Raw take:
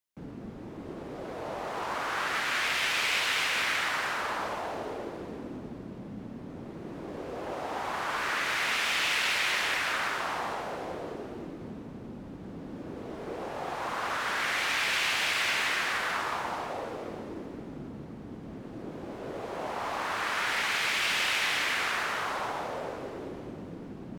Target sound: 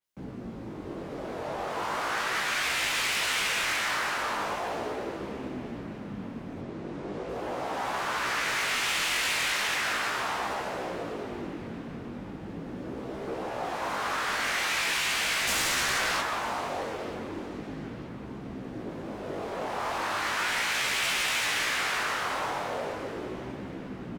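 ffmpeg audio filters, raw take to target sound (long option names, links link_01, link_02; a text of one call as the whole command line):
ffmpeg -i in.wav -filter_complex "[0:a]asettb=1/sr,asplit=3[link_01][link_02][link_03];[link_01]atrim=end=6.614[link_04];[link_02]atrim=start=6.61:end=7.29,asetpts=PTS-STARTPTS,afade=type=in:duration=0.004:curve=qsin,afade=type=out:start_time=0.676:duration=0.004:curve=qsin,lowpass=8200[link_05];[link_03]atrim=start=7.286[link_06];[link_04][link_05]acrossfade=duration=0.004:curve1=hsin:curve2=qsin[link_07];[link_07][link_06]acrossfade=duration=0.004:curve1=qsin:curve2=hsin,asettb=1/sr,asplit=3[link_08][link_09][link_10];[link_08]atrim=end=15.474[link_11];[link_09]atrim=start=15.47:end=16.21,asetpts=PTS-STARTPTS,afade=type=in:duration=0.004:curve=qsin,afade=type=out:start_time=0.736:duration=0.004:curve=qsin,acontrast=23[link_12];[link_10]atrim=start=16.206[link_13];[link_11][link_12]acrossfade=duration=0.004:curve1=hsin:curve2=qsin[link_14];[link_14][link_13]acrossfade=duration=0.004:curve1=qsin:curve2=hsin,aeval=exprs='0.224*sin(PI/2*3.55*val(0)/0.224)':channel_layout=same,flanger=delay=15:depth=7:speed=0.38,asplit=2[link_15][link_16];[link_16]adelay=930,lowpass=frequency=4500:poles=1,volume=-18dB,asplit=2[link_17][link_18];[link_18]adelay=930,lowpass=frequency=4500:poles=1,volume=0.54,asplit=2[link_19][link_20];[link_20]adelay=930,lowpass=frequency=4500:poles=1,volume=0.54,asplit=2[link_21][link_22];[link_22]adelay=930,lowpass=frequency=4500:poles=1,volume=0.54,asplit=2[link_23][link_24];[link_24]adelay=930,lowpass=frequency=4500:poles=1,volume=0.54[link_25];[link_15][link_17][link_19][link_21][link_23][link_25]amix=inputs=6:normalize=0,adynamicequalizer=threshold=0.0224:dfrequency=4900:dqfactor=0.7:tfrequency=4900:tqfactor=0.7:attack=5:release=100:ratio=0.375:range=1.5:mode=boostabove:tftype=highshelf,volume=-9dB" out.wav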